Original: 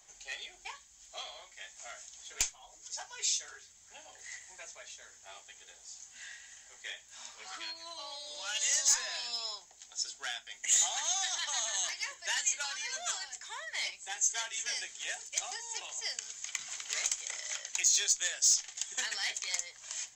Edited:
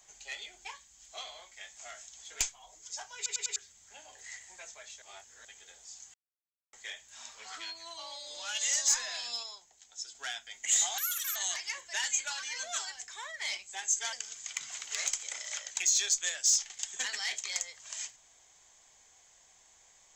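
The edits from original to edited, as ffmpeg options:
-filter_complex "[0:a]asplit=14[s0][s1][s2][s3][s4][s5][s6][s7][s8][s9][s10][s11][s12][s13];[s0]atrim=end=3.262[s14];[s1]atrim=start=3.158:end=3.262[s15];[s2]atrim=start=3.158:end=3.262[s16];[s3]atrim=start=3.158:end=3.262[s17];[s4]atrim=start=3.558:end=5.022[s18];[s5]atrim=start=5.018:end=5.452,asetpts=PTS-STARTPTS,areverse[s19];[s6]atrim=start=5.448:end=6.14,asetpts=PTS-STARTPTS,afade=t=out:st=0.688:d=0.004:c=hsin[s20];[s7]atrim=start=6.14:end=6.73,asetpts=PTS-STARTPTS,volume=0[s21];[s8]atrim=start=6.73:end=9.432,asetpts=PTS-STARTPTS,afade=t=in:d=0.004:c=hsin[s22];[s9]atrim=start=9.428:end=10.152,asetpts=PTS-STARTPTS,volume=0.531[s23];[s10]atrim=start=10.148:end=10.984[s24];[s11]atrim=start=10.98:end=11.69,asetpts=PTS-STARTPTS,asetrate=82908,aresample=44100[s25];[s12]atrim=start=11.686:end=14.462[s26];[s13]atrim=start=16.108[s27];[s14][s15]acrossfade=d=0.004:c1=hsin:c2=hsin[s28];[s28][s16]acrossfade=d=0.004:c1=hsin:c2=hsin[s29];[s29][s17]acrossfade=d=0.004:c1=hsin:c2=hsin[s30];[s30][s18]acrossfade=d=0.004:c1=hsin:c2=hsin[s31];[s31][s19]acrossfade=d=0.004:c1=hsin:c2=hsin[s32];[s20][s21][s22]concat=n=3:v=0:a=1[s33];[s32][s33]acrossfade=d=0.004:c1=hsin:c2=hsin[s34];[s34][s23]acrossfade=d=0.004:c1=hsin:c2=hsin[s35];[s35][s24]acrossfade=d=0.004:c1=hsin:c2=hsin[s36];[s36][s25]acrossfade=d=0.004:c1=hsin:c2=hsin[s37];[s37][s26]acrossfade=d=0.004:c1=hsin:c2=hsin[s38];[s38][s27]acrossfade=d=0.004:c1=hsin:c2=hsin"

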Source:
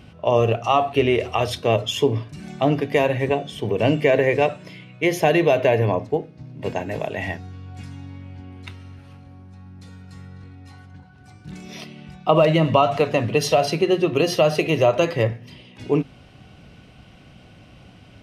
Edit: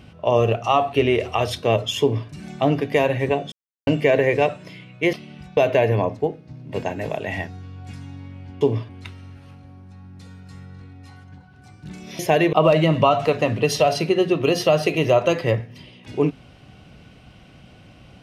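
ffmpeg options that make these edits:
-filter_complex "[0:a]asplit=9[s0][s1][s2][s3][s4][s5][s6][s7][s8];[s0]atrim=end=3.52,asetpts=PTS-STARTPTS,afade=t=out:st=3.516:d=0.004:c=hsin[s9];[s1]atrim=start=3.52:end=3.87,asetpts=PTS-STARTPTS,volume=0[s10];[s2]atrim=start=3.87:end=5.132,asetpts=PTS-STARTPTS,afade=t=in:d=0.004:c=hsin[s11];[s3]atrim=start=11.808:end=12.252[s12];[s4]atrim=start=5.468:end=8.512[s13];[s5]atrim=start=2.008:end=2.292[s14];[s6]atrim=start=8.508:end=11.812[s15];[s7]atrim=start=5.128:end=5.472[s16];[s8]atrim=start=12.248[s17];[s9][s10][s11]concat=n=3:v=0:a=1[s18];[s18][s12]acrossfade=d=0.004:c1=hsin:c2=hsin[s19];[s19][s13]acrossfade=d=0.004:c1=hsin:c2=hsin[s20];[s20][s14]acrossfade=d=0.004:c1=hsin:c2=hsin[s21];[s21][s15]acrossfade=d=0.004:c1=hsin:c2=hsin[s22];[s22][s16]acrossfade=d=0.004:c1=hsin:c2=hsin[s23];[s23][s17]acrossfade=d=0.004:c1=hsin:c2=hsin"

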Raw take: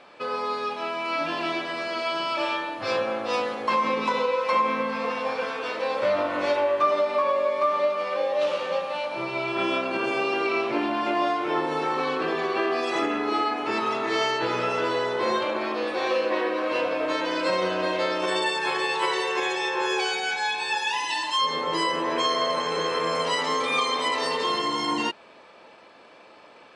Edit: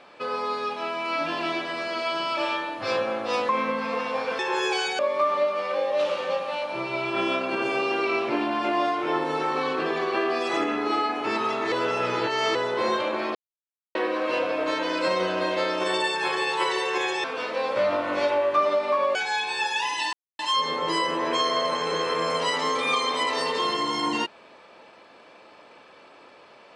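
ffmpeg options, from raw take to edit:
-filter_complex "[0:a]asplit=11[s0][s1][s2][s3][s4][s5][s6][s7][s8][s9][s10];[s0]atrim=end=3.492[s11];[s1]atrim=start=4.598:end=5.502[s12];[s2]atrim=start=19.658:end=20.262[s13];[s3]atrim=start=7.408:end=14.142[s14];[s4]atrim=start=14.138:end=14.972,asetpts=PTS-STARTPTS,areverse[s15];[s5]atrim=start=14.968:end=15.77,asetpts=PTS-STARTPTS,afade=t=out:st=0.798:d=0.004:c=hsin[s16];[s6]atrim=start=15.77:end=16.37,asetpts=PTS-STARTPTS,volume=0[s17];[s7]atrim=start=16.37:end=19.662,asetpts=PTS-STARTPTS,afade=t=in:d=0.004:c=hsin[s18];[s8]atrim=start=5.498:end=7.412[s19];[s9]atrim=start=20.258:end=21.24,asetpts=PTS-STARTPTS,afade=t=out:st=0.978:d=0.004:c=hsin,apad=pad_dur=0.26[s20];[s10]atrim=start=21.24,asetpts=PTS-STARTPTS,afade=t=in:d=0.004:c=hsin[s21];[s11][s12]acrossfade=d=0.004:c1=hsin:c2=hsin[s22];[s22][s13]acrossfade=d=0.004:c1=hsin:c2=hsin[s23];[s23][s14]acrossfade=d=0.004:c1=hsin:c2=hsin[s24];[s24][s15]acrossfade=d=0.004:c1=hsin:c2=hsin[s25];[s16][s17][s18]concat=n=3:v=0:a=1[s26];[s25][s26]acrossfade=d=0.004:c1=hsin:c2=hsin[s27];[s27][s19]acrossfade=d=0.004:c1=hsin:c2=hsin[s28];[s20][s21]concat=n=2:v=0:a=1[s29];[s28][s29]acrossfade=d=0.004:c1=hsin:c2=hsin"

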